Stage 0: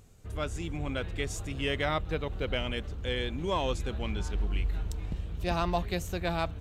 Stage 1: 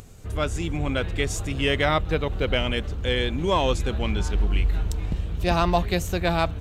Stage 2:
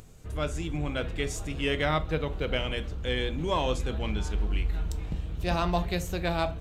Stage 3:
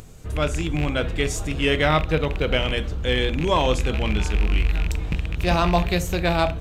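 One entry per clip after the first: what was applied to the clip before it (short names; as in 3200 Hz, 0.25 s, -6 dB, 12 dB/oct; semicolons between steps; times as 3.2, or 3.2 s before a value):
upward compressor, threshold -48 dBFS; gain +8 dB
reverb RT60 0.40 s, pre-delay 6 ms, DRR 10 dB; gain -6 dB
rattling part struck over -28 dBFS, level -26 dBFS; gain +7.5 dB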